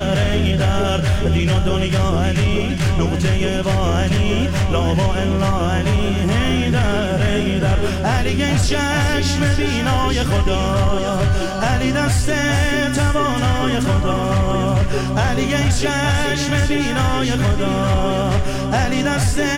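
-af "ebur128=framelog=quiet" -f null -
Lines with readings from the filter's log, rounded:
Integrated loudness:
  I:         -17.9 LUFS
  Threshold: -27.9 LUFS
Loudness range:
  LRA:         0.4 LU
  Threshold: -37.9 LUFS
  LRA low:   -18.1 LUFS
  LRA high:  -17.7 LUFS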